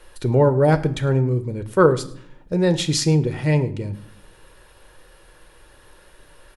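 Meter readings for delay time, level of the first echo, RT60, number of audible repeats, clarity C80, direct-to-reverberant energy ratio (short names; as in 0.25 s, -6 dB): 0.105 s, -22.5 dB, 0.60 s, 1, 18.0 dB, 8.0 dB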